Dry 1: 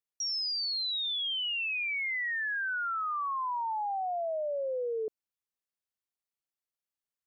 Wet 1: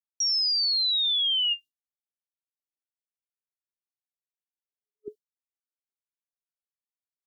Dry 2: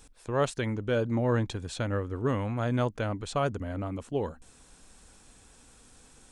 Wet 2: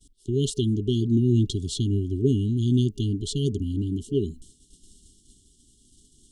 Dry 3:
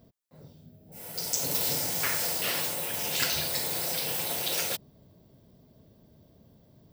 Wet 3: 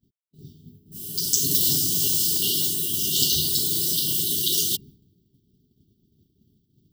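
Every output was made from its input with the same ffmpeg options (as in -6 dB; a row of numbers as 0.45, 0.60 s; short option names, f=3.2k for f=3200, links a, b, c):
-af "afftfilt=real='re*(1-between(b*sr/4096,430,2800))':imag='im*(1-between(b*sr/4096,430,2800))':win_size=4096:overlap=0.75,agate=range=-33dB:threshold=-48dB:ratio=3:detection=peak,volume=8dB"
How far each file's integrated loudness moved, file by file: +9.0, +5.5, +7.5 LU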